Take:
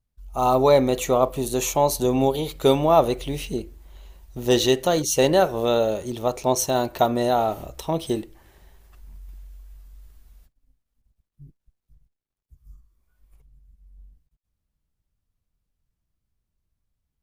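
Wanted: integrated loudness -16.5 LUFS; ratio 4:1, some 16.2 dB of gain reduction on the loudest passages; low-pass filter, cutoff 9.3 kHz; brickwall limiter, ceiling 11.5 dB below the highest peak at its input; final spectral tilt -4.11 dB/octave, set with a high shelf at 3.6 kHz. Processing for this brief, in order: low-pass 9.3 kHz; treble shelf 3.6 kHz +5.5 dB; compression 4:1, threshold -32 dBFS; trim +20.5 dB; peak limiter -5 dBFS

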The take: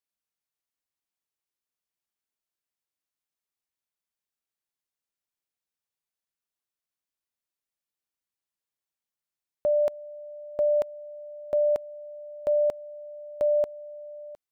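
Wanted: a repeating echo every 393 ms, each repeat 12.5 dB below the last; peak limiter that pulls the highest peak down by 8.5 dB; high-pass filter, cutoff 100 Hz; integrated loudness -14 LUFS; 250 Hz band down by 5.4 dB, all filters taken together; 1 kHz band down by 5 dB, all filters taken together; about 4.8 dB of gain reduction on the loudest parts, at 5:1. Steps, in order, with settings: high-pass 100 Hz; peaking EQ 250 Hz -7 dB; peaking EQ 1 kHz -7.5 dB; compression 5:1, threshold -29 dBFS; peak limiter -30.5 dBFS; feedback delay 393 ms, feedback 24%, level -12.5 dB; trim +26 dB

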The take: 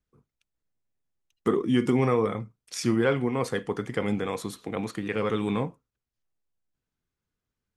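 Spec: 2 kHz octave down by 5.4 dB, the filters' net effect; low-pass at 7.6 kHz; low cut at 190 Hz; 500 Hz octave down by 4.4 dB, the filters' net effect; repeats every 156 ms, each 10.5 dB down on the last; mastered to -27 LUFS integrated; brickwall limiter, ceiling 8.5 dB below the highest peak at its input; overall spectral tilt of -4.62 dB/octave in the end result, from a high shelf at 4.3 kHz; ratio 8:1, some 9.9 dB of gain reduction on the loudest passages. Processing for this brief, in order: high-pass 190 Hz; low-pass 7.6 kHz; peaking EQ 500 Hz -5 dB; peaking EQ 2 kHz -8 dB; treble shelf 4.3 kHz +7 dB; compression 8:1, threshold -32 dBFS; peak limiter -28 dBFS; feedback delay 156 ms, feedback 30%, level -10.5 dB; trim +12 dB

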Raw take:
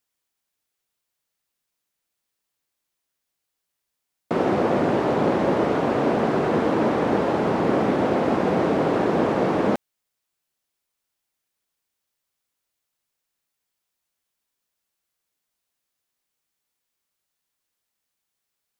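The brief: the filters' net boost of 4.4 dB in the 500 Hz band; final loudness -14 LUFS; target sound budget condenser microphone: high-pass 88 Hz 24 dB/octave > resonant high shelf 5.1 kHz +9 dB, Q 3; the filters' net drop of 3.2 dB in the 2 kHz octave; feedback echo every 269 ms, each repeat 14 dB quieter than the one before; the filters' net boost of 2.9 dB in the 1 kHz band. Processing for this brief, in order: high-pass 88 Hz 24 dB/octave; peaking EQ 500 Hz +5 dB; peaking EQ 1 kHz +3 dB; peaking EQ 2 kHz -4.5 dB; resonant high shelf 5.1 kHz +9 dB, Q 3; feedback delay 269 ms, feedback 20%, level -14 dB; trim +4.5 dB

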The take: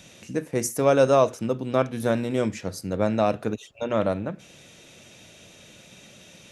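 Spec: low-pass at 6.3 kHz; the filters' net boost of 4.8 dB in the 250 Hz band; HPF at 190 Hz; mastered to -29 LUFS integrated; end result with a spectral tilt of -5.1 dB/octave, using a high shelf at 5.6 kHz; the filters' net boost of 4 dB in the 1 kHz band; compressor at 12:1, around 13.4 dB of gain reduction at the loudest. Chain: high-pass 190 Hz; low-pass 6.3 kHz; peaking EQ 250 Hz +7 dB; peaking EQ 1 kHz +5 dB; treble shelf 5.6 kHz +6 dB; compression 12:1, threshold -24 dBFS; trim +1.5 dB

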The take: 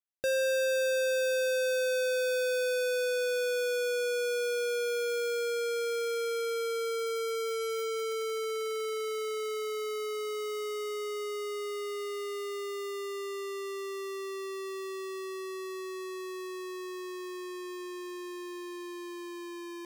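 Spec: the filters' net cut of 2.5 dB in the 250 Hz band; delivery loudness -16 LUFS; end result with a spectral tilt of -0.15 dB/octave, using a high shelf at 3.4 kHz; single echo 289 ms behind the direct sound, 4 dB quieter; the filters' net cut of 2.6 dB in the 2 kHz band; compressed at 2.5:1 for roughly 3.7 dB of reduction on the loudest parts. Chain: peaking EQ 250 Hz -5.5 dB; peaking EQ 2 kHz -6.5 dB; treble shelf 3.4 kHz +8 dB; compression 2.5:1, threshold -32 dBFS; delay 289 ms -4 dB; trim +18 dB

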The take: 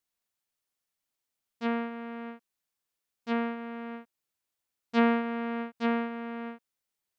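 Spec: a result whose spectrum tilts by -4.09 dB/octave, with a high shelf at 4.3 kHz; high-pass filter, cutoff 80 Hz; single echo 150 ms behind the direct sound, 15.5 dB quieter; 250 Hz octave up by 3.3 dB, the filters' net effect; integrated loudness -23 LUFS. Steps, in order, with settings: high-pass 80 Hz; peaking EQ 250 Hz +3.5 dB; treble shelf 4.3 kHz +7 dB; delay 150 ms -15.5 dB; trim +6 dB

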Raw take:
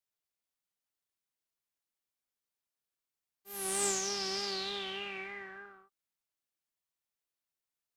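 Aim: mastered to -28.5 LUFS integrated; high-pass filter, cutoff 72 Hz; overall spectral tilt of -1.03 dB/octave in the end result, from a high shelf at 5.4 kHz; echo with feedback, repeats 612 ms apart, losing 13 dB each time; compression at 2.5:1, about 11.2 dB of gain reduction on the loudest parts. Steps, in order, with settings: high-pass 72 Hz; treble shelf 5.4 kHz +8.5 dB; compression 2.5:1, threshold -40 dBFS; feedback delay 612 ms, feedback 22%, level -13 dB; trim +10 dB

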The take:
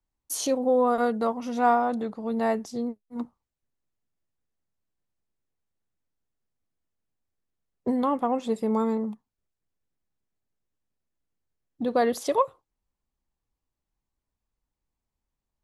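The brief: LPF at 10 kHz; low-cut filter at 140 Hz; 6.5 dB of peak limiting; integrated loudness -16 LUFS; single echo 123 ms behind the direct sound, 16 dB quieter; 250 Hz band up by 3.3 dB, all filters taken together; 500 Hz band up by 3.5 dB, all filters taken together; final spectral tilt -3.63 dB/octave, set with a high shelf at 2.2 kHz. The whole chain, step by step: high-pass 140 Hz; low-pass 10 kHz; peaking EQ 250 Hz +3.5 dB; peaking EQ 500 Hz +3.5 dB; treble shelf 2.2 kHz -7 dB; peak limiter -15 dBFS; delay 123 ms -16 dB; trim +9.5 dB

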